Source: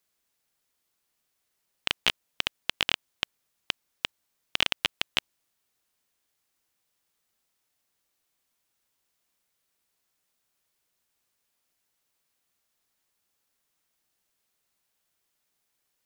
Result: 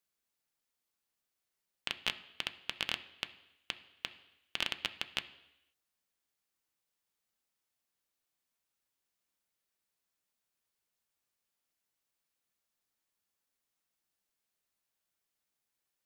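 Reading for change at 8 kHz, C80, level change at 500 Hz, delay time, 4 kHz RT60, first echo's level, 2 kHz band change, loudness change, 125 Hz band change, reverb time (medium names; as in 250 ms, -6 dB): -9.0 dB, 17.5 dB, -9.0 dB, no echo, 0.90 s, no echo, -8.5 dB, -8.5 dB, -8.5 dB, 0.85 s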